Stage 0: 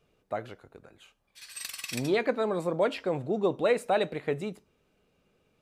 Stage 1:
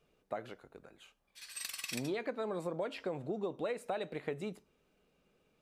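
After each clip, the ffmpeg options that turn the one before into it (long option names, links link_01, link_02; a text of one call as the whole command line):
ffmpeg -i in.wav -af "equalizer=frequency=99:width_type=o:width=0.35:gain=-13.5,acompressor=threshold=-31dB:ratio=6,volume=-3dB" out.wav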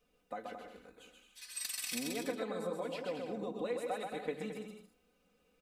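ffmpeg -i in.wav -filter_complex "[0:a]highshelf=frequency=5200:gain=5.5,aecho=1:1:4:0.81,asplit=2[link_01][link_02];[link_02]aecho=0:1:130|221|284.7|329.3|360.5:0.631|0.398|0.251|0.158|0.1[link_03];[link_01][link_03]amix=inputs=2:normalize=0,volume=-5dB" out.wav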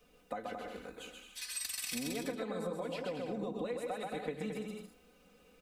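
ffmpeg -i in.wav -filter_complex "[0:a]acrossover=split=140[link_01][link_02];[link_02]acompressor=threshold=-49dB:ratio=3[link_03];[link_01][link_03]amix=inputs=2:normalize=0,volume=9.5dB" out.wav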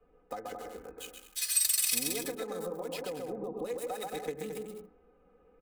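ffmpeg -i in.wav -filter_complex "[0:a]aecho=1:1:2.4:0.43,acrossover=split=210|1500[link_01][link_02][link_03];[link_03]aeval=exprs='sgn(val(0))*max(abs(val(0))-0.00211,0)':channel_layout=same[link_04];[link_01][link_02][link_04]amix=inputs=3:normalize=0,crystalizer=i=3.5:c=0" out.wav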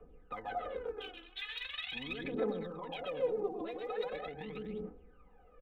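ffmpeg -i in.wav -af "aresample=8000,aresample=44100,alimiter=level_in=9.5dB:limit=-24dB:level=0:latency=1:release=47,volume=-9.5dB,aphaser=in_gain=1:out_gain=1:delay=3:decay=0.75:speed=0.41:type=triangular" out.wav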